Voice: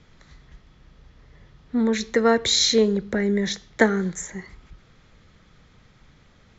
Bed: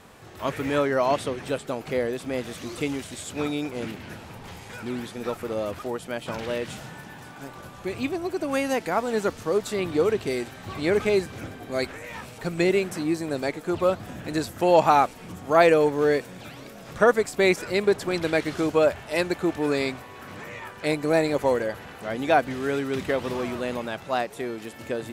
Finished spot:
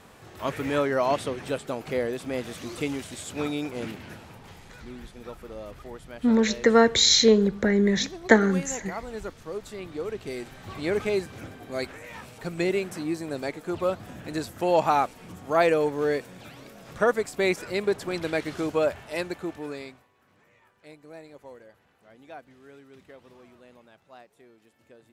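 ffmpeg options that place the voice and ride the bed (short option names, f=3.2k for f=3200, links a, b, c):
-filter_complex "[0:a]adelay=4500,volume=1dB[a];[1:a]volume=5.5dB,afade=t=out:st=3.88:d=0.92:silence=0.334965,afade=t=in:st=10.05:d=0.62:silence=0.446684,afade=t=out:st=18.96:d=1.15:silence=0.105925[b];[a][b]amix=inputs=2:normalize=0"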